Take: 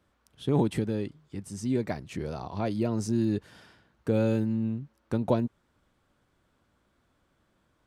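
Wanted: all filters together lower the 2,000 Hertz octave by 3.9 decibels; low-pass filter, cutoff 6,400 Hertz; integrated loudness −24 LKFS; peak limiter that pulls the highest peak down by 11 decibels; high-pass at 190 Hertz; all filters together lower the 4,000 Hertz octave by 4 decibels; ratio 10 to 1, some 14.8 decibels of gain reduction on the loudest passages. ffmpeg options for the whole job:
ffmpeg -i in.wav -af "highpass=190,lowpass=6400,equalizer=frequency=2000:width_type=o:gain=-4.5,equalizer=frequency=4000:width_type=o:gain=-3,acompressor=threshold=-36dB:ratio=10,volume=22dB,alimiter=limit=-13.5dB:level=0:latency=1" out.wav

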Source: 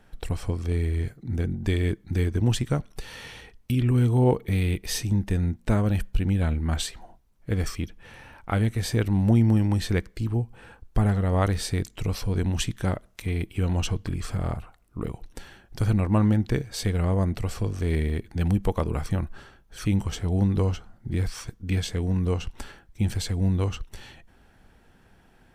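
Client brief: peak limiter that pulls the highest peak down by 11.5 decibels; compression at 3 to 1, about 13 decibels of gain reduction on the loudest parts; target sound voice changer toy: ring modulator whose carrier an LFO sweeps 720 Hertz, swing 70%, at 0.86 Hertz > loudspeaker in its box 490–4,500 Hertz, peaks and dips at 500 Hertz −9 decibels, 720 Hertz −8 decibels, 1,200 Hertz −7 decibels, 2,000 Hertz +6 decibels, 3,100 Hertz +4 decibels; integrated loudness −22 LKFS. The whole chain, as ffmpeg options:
ffmpeg -i in.wav -af "acompressor=threshold=-33dB:ratio=3,alimiter=level_in=5dB:limit=-24dB:level=0:latency=1,volume=-5dB,aeval=exprs='val(0)*sin(2*PI*720*n/s+720*0.7/0.86*sin(2*PI*0.86*n/s))':channel_layout=same,highpass=490,equalizer=frequency=500:width_type=q:width=4:gain=-9,equalizer=frequency=720:width_type=q:width=4:gain=-8,equalizer=frequency=1200:width_type=q:width=4:gain=-7,equalizer=frequency=2000:width_type=q:width=4:gain=6,equalizer=frequency=3100:width_type=q:width=4:gain=4,lowpass=frequency=4500:width=0.5412,lowpass=frequency=4500:width=1.3066,volume=24dB" out.wav

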